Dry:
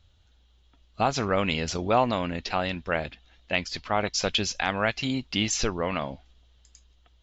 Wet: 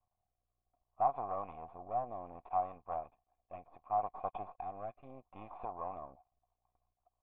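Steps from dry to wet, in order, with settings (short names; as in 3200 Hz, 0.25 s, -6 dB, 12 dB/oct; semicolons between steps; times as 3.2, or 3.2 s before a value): half-wave rectifier; rotary speaker horn 0.65 Hz, later 6 Hz, at 5.73; vocal tract filter a; gain +6.5 dB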